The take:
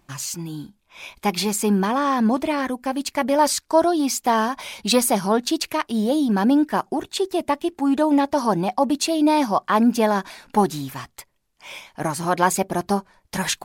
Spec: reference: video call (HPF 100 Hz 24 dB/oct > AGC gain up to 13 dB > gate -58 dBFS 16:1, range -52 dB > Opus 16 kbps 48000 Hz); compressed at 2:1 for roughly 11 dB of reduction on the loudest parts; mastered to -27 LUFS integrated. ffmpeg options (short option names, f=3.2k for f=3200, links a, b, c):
-af "acompressor=threshold=-33dB:ratio=2,highpass=f=100:w=0.5412,highpass=f=100:w=1.3066,dynaudnorm=m=13dB,agate=range=-52dB:threshold=-58dB:ratio=16,volume=4dB" -ar 48000 -c:a libopus -b:a 16k